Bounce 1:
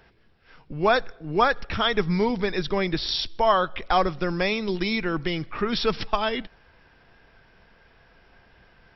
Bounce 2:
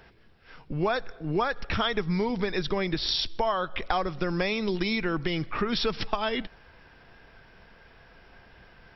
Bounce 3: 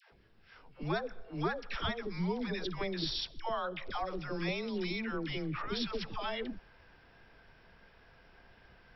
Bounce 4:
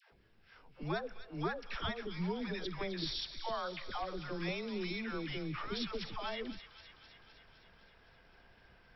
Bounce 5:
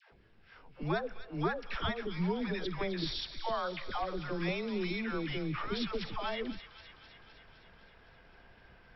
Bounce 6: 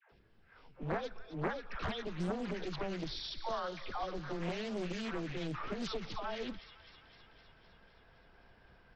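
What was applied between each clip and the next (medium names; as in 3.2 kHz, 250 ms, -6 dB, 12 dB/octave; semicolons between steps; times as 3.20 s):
compression 6:1, threshold -26 dBFS, peak gain reduction 11.5 dB; trim +2.5 dB
peak limiter -20 dBFS, peak gain reduction 7 dB; phase dispersion lows, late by 121 ms, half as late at 650 Hz; trim -6.5 dB
feedback echo behind a high-pass 257 ms, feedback 69%, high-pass 1.9 kHz, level -10 dB; trim -3 dB
distance through air 110 m; trim +4.5 dB
bands offset in time lows, highs 90 ms, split 2.3 kHz; loudspeaker Doppler distortion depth 0.81 ms; trim -3 dB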